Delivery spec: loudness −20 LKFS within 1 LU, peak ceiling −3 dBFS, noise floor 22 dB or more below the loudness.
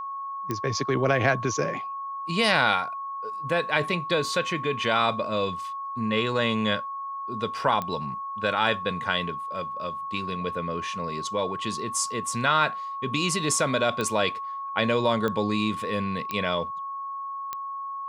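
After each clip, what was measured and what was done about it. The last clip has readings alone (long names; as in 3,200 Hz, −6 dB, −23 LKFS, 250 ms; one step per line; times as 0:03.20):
number of clicks 6; interfering tone 1,100 Hz; level of the tone −31 dBFS; integrated loudness −26.5 LKFS; sample peak −6.0 dBFS; target loudness −20.0 LKFS
→ click removal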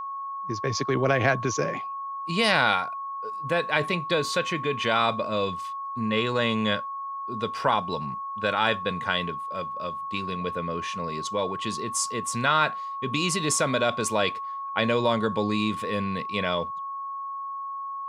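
number of clicks 0; interfering tone 1,100 Hz; level of the tone −31 dBFS
→ notch filter 1,100 Hz, Q 30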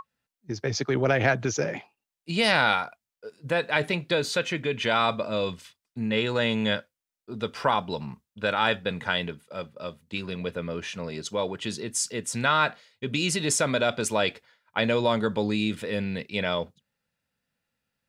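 interfering tone none found; integrated loudness −26.5 LKFS; sample peak −6.0 dBFS; target loudness −20.0 LKFS
→ level +6.5 dB
brickwall limiter −3 dBFS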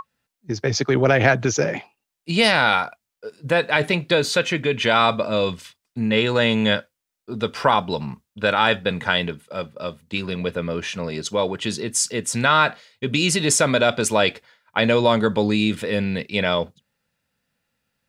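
integrated loudness −20.5 LKFS; sample peak −3.0 dBFS; background noise floor −82 dBFS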